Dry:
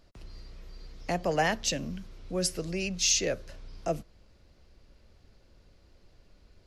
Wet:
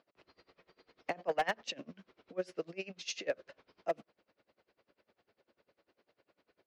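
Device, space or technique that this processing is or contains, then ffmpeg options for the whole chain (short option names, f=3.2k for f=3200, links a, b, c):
helicopter radio: -af "highpass=360,lowpass=2.8k,aeval=exprs='val(0)*pow(10,-25*(0.5-0.5*cos(2*PI*10*n/s))/20)':c=same,asoftclip=type=hard:threshold=-25.5dB,volume=1dB"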